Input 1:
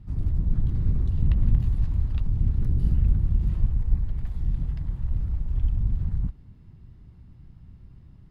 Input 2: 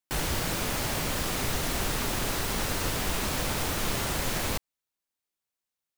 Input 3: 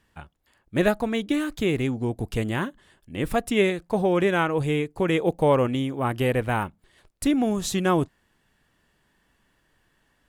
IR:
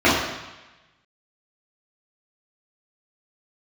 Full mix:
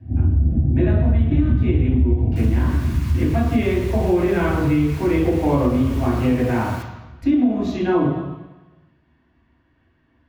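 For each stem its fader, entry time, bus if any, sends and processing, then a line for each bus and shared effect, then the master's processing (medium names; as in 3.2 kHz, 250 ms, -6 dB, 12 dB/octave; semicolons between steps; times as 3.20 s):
2.19 s -5 dB -> 2.66 s -15 dB, 0.00 s, send -4 dB, rippled Chebyshev low-pass 800 Hz, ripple 3 dB
-13.0 dB, 2.25 s, send -18.5 dB, steep high-pass 940 Hz 48 dB/octave
-11.5 dB, 0.00 s, send -12 dB, boxcar filter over 5 samples; bass shelf 190 Hz +11 dB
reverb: on, RT60 1.1 s, pre-delay 3 ms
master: compression 4:1, threshold -14 dBFS, peak gain reduction 10.5 dB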